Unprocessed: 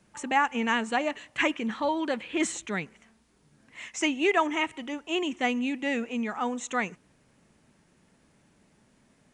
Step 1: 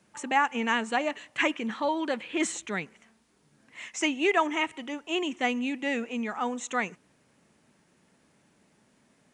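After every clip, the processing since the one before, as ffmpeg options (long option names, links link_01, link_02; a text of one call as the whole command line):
ffmpeg -i in.wav -af "highpass=frequency=160:poles=1" out.wav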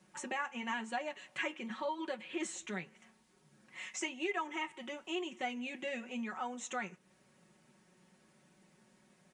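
ffmpeg -i in.wav -af "aecho=1:1:5.4:0.82,acompressor=threshold=-38dB:ratio=2,flanger=delay=6.4:depth=4.9:regen=-69:speed=0.93:shape=sinusoidal" out.wav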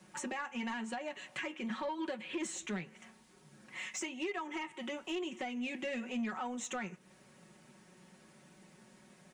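ffmpeg -i in.wav -filter_complex "[0:a]alimiter=level_in=5.5dB:limit=-24dB:level=0:latency=1:release=233,volume=-5.5dB,acrossover=split=350[link_01][link_02];[link_02]acompressor=threshold=-51dB:ratio=1.5[link_03];[link_01][link_03]amix=inputs=2:normalize=0,asoftclip=type=tanh:threshold=-36.5dB,volume=6.5dB" out.wav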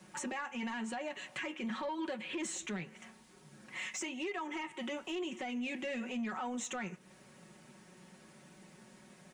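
ffmpeg -i in.wav -af "alimiter=level_in=11dB:limit=-24dB:level=0:latency=1:release=15,volume=-11dB,volume=2.5dB" out.wav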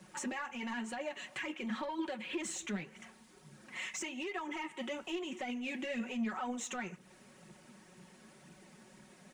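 ffmpeg -i in.wav -af "aphaser=in_gain=1:out_gain=1:delay=4.9:decay=0.41:speed=2:type=triangular,volume=-1dB" out.wav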